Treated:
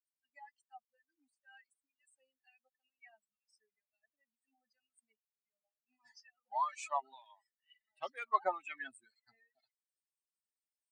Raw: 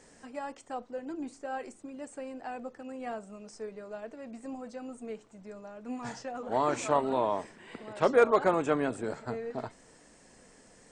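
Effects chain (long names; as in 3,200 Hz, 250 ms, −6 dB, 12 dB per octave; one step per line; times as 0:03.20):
spectral dynamics exaggerated over time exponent 3
phase shifter 0.24 Hz, delay 2.3 ms, feedback 46%
auto-filter high-pass sine 2.1 Hz 790–2,400 Hz
speech leveller within 3 dB 0.5 s
level −5.5 dB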